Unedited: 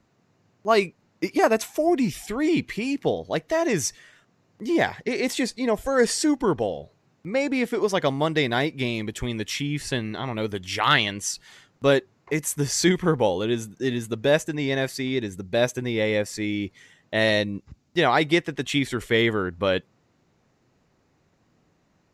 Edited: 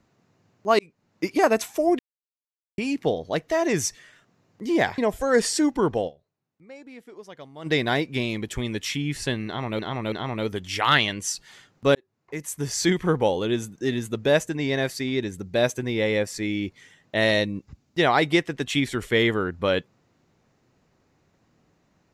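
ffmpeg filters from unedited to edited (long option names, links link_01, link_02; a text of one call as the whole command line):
ffmpeg -i in.wav -filter_complex "[0:a]asplit=10[link_01][link_02][link_03][link_04][link_05][link_06][link_07][link_08][link_09][link_10];[link_01]atrim=end=0.79,asetpts=PTS-STARTPTS,afade=type=out:start_time=0.786:duration=0.004:curve=hsin[link_11];[link_02]atrim=start=0.79:end=1.99,asetpts=PTS-STARTPTS,afade=type=in:duration=0.45,afade=type=out:start_time=1.196:duration=0.004:curve=hsin[link_12];[link_03]atrim=start=1.99:end=2.78,asetpts=PTS-STARTPTS,volume=0[link_13];[link_04]atrim=start=2.78:end=4.982,asetpts=PTS-STARTPTS,afade=type=in:duration=0.004:curve=hsin[link_14];[link_05]atrim=start=5.628:end=6.96,asetpts=PTS-STARTPTS,afade=type=out:start_time=1.092:duration=0.24:curve=exp:silence=0.1[link_15];[link_06]atrim=start=6.96:end=8.08,asetpts=PTS-STARTPTS,volume=-20dB[link_16];[link_07]atrim=start=8.08:end=10.442,asetpts=PTS-STARTPTS,afade=type=in:duration=0.24:curve=exp:silence=0.1[link_17];[link_08]atrim=start=10.108:end=10.442[link_18];[link_09]atrim=start=10.108:end=11.94,asetpts=PTS-STARTPTS,afade=type=out:start_time=1.828:duration=0.004:curve=hsin[link_19];[link_10]atrim=start=11.94,asetpts=PTS-STARTPTS,afade=type=in:duration=1.55:curve=qsin[link_20];[link_11][link_12][link_13][link_14]concat=n=4:v=0:a=1[link_21];[link_15][link_16][link_17]concat=n=3:v=0:a=1[link_22];[link_21][link_22]acrossfade=duration=0.004:curve1=hsin:curve2=hsin[link_23];[link_23][link_18]acrossfade=duration=0.004:curve1=hsin:curve2=hsin[link_24];[link_19][link_20]concat=n=2:v=0:a=1[link_25];[link_24][link_25]acrossfade=duration=0.004:curve1=hsin:curve2=hsin" out.wav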